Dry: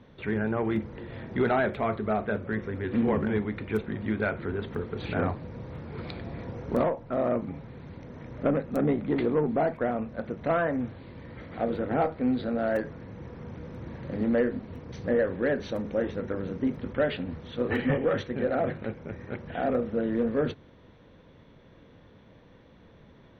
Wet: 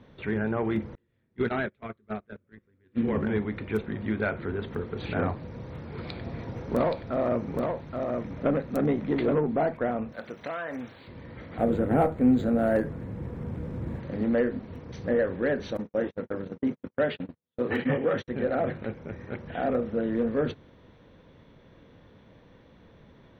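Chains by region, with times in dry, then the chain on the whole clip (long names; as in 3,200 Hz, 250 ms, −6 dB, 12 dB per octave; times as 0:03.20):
0:00.95–0:03.15: noise gate −26 dBFS, range −32 dB + parametric band 760 Hz −8.5 dB 1.1 octaves
0:05.37–0:09.38: high-shelf EQ 4,400 Hz +4.5 dB + single-tap delay 824 ms −4 dB
0:10.12–0:11.08: spectral tilt +3.5 dB per octave + downward compressor 5 to 1, threshold −30 dBFS
0:11.58–0:14.00: low-shelf EQ 420 Hz +7.5 dB + linearly interpolated sample-rate reduction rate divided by 4×
0:15.77–0:18.28: high-pass filter 110 Hz + noise gate −34 dBFS, range −49 dB
whole clip: no processing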